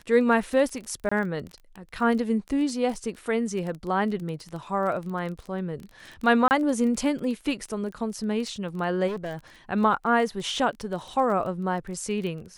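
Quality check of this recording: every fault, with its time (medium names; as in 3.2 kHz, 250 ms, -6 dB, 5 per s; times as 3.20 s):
crackle 18 per s -32 dBFS
1.09–1.11 s: dropout 25 ms
6.48–6.51 s: dropout 29 ms
9.07–9.37 s: clipped -28 dBFS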